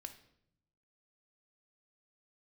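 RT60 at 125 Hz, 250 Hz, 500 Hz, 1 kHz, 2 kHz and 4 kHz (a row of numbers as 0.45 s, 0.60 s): 1.3 s, 1.1 s, 0.80 s, 0.65 s, 0.60 s, 0.55 s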